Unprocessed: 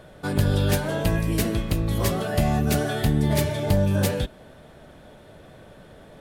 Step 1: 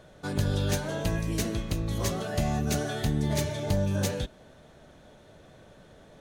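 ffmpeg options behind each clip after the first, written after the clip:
-af "equalizer=f=4000:t=o:w=0.33:g=3,equalizer=f=6300:t=o:w=0.33:g=9,equalizer=f=12500:t=o:w=0.33:g=-5,volume=0.501"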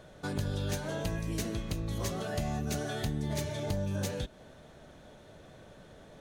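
-af "acompressor=threshold=0.02:ratio=2"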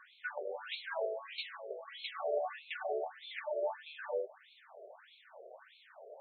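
-af "afftfilt=real='re*between(b*sr/1024,490*pow(3100/490,0.5+0.5*sin(2*PI*1.6*pts/sr))/1.41,490*pow(3100/490,0.5+0.5*sin(2*PI*1.6*pts/sr))*1.41)':imag='im*between(b*sr/1024,490*pow(3100/490,0.5+0.5*sin(2*PI*1.6*pts/sr))/1.41,490*pow(3100/490,0.5+0.5*sin(2*PI*1.6*pts/sr))*1.41)':win_size=1024:overlap=0.75,volume=1.88"

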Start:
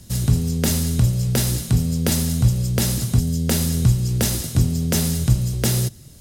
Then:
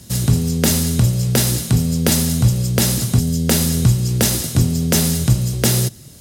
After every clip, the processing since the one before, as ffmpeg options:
-af "highpass=f=120:p=1,volume=1.88"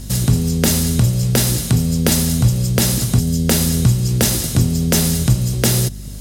-filter_complex "[0:a]asplit=2[s0][s1];[s1]acompressor=threshold=0.0501:ratio=6,volume=1.06[s2];[s0][s2]amix=inputs=2:normalize=0,aeval=exprs='val(0)+0.0398*(sin(2*PI*50*n/s)+sin(2*PI*2*50*n/s)/2+sin(2*PI*3*50*n/s)/3+sin(2*PI*4*50*n/s)/4+sin(2*PI*5*50*n/s)/5)':c=same,volume=0.841"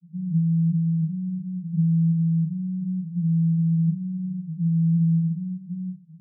-af "asuperpass=centerf=170:order=12:qfactor=5.4"

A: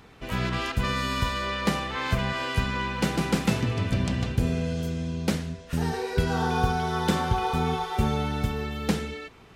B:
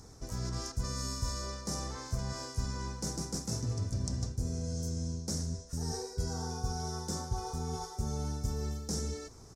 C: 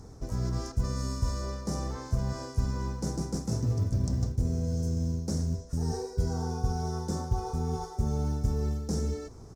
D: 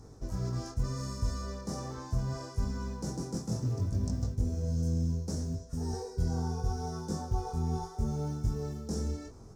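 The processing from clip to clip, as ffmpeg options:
-af "areverse,acompressor=threshold=0.0282:ratio=10,areverse,firequalizer=gain_entry='entry(100,0);entry(180,-8);entry(280,-6);entry(1400,-13);entry(2800,-26);entry(5500,10);entry(13000,-4)':delay=0.05:min_phase=1,volume=1.5"
-af "acrusher=bits=7:mode=log:mix=0:aa=0.000001,tiltshelf=f=1300:g=5.5,volume=1.12"
-af "bandreject=f=2100:w=20,flanger=delay=19.5:depth=4.5:speed=0.71"

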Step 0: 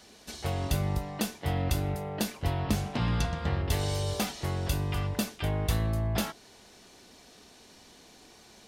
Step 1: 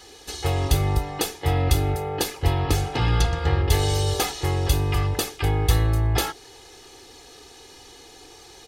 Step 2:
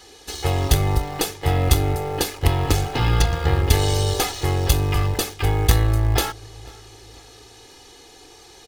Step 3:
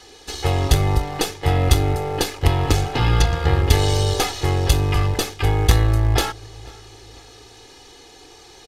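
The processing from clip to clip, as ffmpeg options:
-af "aecho=1:1:2.4:0.9,volume=1.88"
-filter_complex "[0:a]asplit=2[s0][s1];[s1]acrusher=bits=3:dc=4:mix=0:aa=0.000001,volume=0.501[s2];[s0][s2]amix=inputs=2:normalize=0,asplit=2[s3][s4];[s4]adelay=493,lowpass=f=4200:p=1,volume=0.0708,asplit=2[s5][s6];[s6]adelay=493,lowpass=f=4200:p=1,volume=0.44,asplit=2[s7][s8];[s8]adelay=493,lowpass=f=4200:p=1,volume=0.44[s9];[s3][s5][s7][s9]amix=inputs=4:normalize=0"
-filter_complex "[0:a]acrossover=split=7700[s0][s1];[s1]aeval=exprs='max(val(0),0)':c=same[s2];[s0][s2]amix=inputs=2:normalize=0,aresample=32000,aresample=44100,volume=1.19"

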